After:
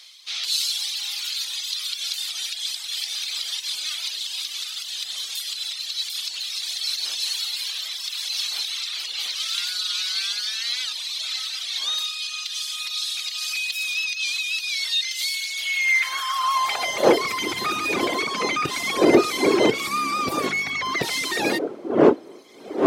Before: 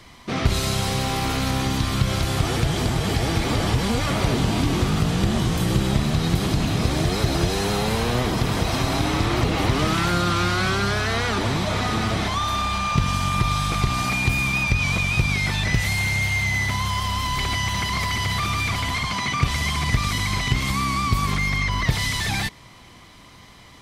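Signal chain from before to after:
wind on the microphone 410 Hz −27 dBFS
high-pass filter sweep 3,600 Hz → 340 Hz, 0:16.23–0:18.03
reverb reduction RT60 1.7 s
wrong playback speed 24 fps film run at 25 fps
level +2 dB

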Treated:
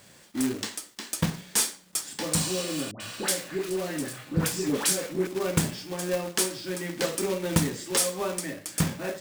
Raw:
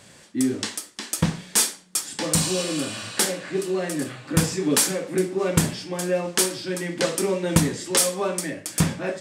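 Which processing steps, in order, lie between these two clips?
log-companded quantiser 4 bits
0:02.91–0:05.27: all-pass dispersion highs, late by 91 ms, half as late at 970 Hz
level −5 dB

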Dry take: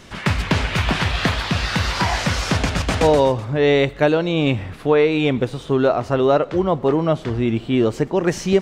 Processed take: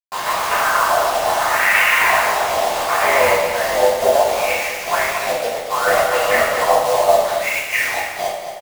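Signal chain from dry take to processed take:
turntable brake at the end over 1.04 s
Chebyshev high-pass filter 530 Hz, order 8
parametric band 780 Hz +7 dB 0.8 octaves
notch filter 890 Hz, Q 12
in parallel at −2.5 dB: downward compressor, threshold −24 dBFS, peak gain reduction 14 dB
on the sum: low-pass filter sweep 970 Hz → 2,400 Hz, 0:00.08–0:01.77
wave folding −9 dBFS
auto-filter low-pass sine 0.69 Hz 680–2,400 Hz
ring modulation 47 Hz
bit reduction 4 bits
single-tap delay 227 ms −8.5 dB
coupled-rooms reverb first 0.8 s, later 2.5 s, DRR −8.5 dB
level −8 dB

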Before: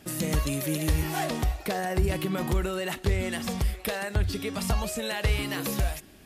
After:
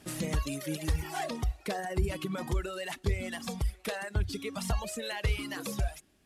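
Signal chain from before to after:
variable-slope delta modulation 64 kbit/s
reverb reduction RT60 2 s
level −3.5 dB

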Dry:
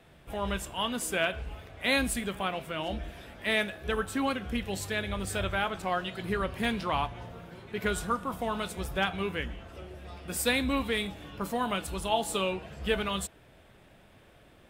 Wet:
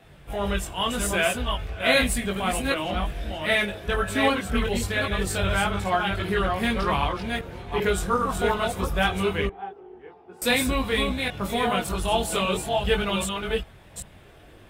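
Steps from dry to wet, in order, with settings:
delay that plays each chunk backwards 389 ms, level −4 dB
0:09.47–0:10.42: pair of resonant band-passes 580 Hz, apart 0.91 octaves
multi-voice chorus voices 6, 0.49 Hz, delay 21 ms, depth 1.5 ms
level +8 dB

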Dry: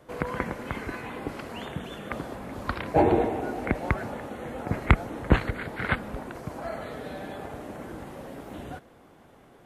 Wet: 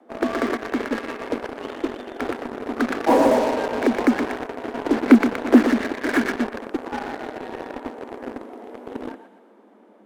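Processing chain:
spectral tilt −3 dB per octave
frequency shifter +200 Hz
on a send: feedback echo with a high-pass in the loop 116 ms, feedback 51%, high-pass 880 Hz, level −3.5 dB
on the sum: dynamic equaliser 1,700 Hz, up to +5 dB, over −45 dBFS, Q 2
in parallel at −5.5 dB: fuzz pedal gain 29 dB, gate −27 dBFS
on the sum: wrong playback speed 25 fps video run at 24 fps
level −4 dB

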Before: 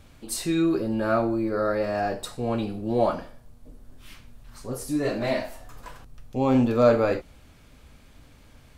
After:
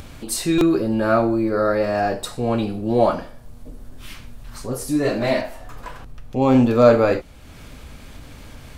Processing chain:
0:05.41–0:06.42: bass and treble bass −1 dB, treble −6 dB
in parallel at +3 dB: upward compression, threshold −31 dBFS
on the sum: buffer that repeats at 0:00.58, samples 128, times 10
level −2 dB

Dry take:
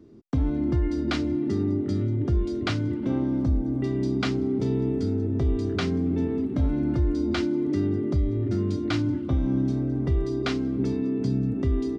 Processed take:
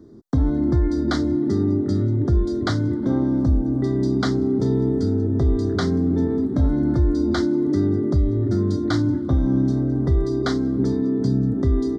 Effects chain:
Butterworth band-reject 2,600 Hz, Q 1.5
level +5 dB

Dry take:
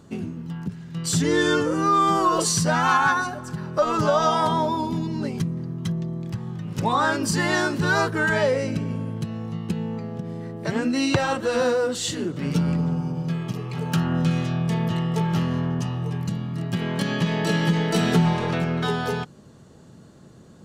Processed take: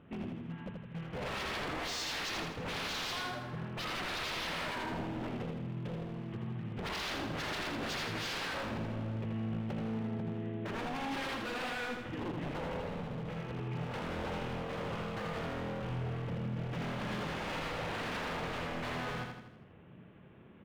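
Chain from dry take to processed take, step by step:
variable-slope delta modulation 16 kbit/s
wave folding −26 dBFS
on a send: repeating echo 81 ms, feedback 50%, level −4.5 dB
on the sum: level −8.5 dB

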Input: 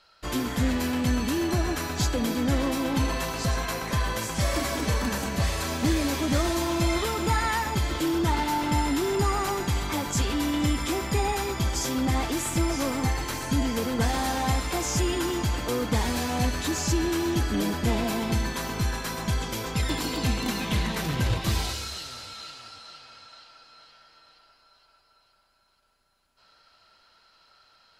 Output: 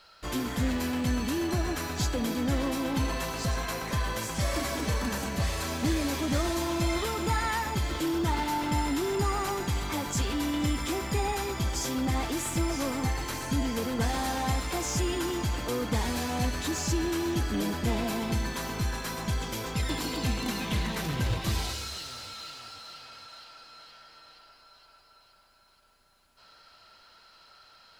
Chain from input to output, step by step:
mu-law and A-law mismatch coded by mu
level −4 dB

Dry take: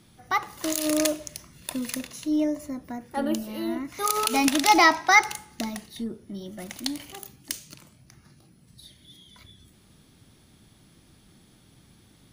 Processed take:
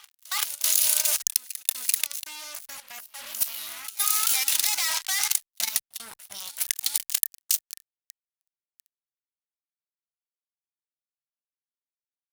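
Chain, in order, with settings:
fuzz pedal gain 30 dB, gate −36 dBFS
notch filter 1,800 Hz, Q 22
backwards echo 387 ms −19.5 dB
reversed playback
downward compressor 12 to 1, threshold −24 dBFS, peak gain reduction 11 dB
reversed playback
guitar amp tone stack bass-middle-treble 10-0-10
output level in coarse steps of 12 dB
spectral tilt +3.5 dB per octave
wow of a warped record 78 rpm, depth 100 cents
level +3.5 dB

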